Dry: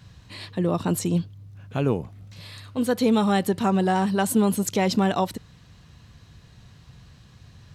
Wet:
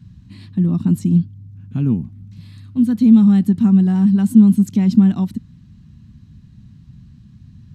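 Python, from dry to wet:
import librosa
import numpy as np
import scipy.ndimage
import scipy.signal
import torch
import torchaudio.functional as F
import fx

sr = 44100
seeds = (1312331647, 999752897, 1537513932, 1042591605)

y = fx.low_shelf_res(x, sr, hz=340.0, db=14.0, q=3.0)
y = y * 10.0 ** (-9.5 / 20.0)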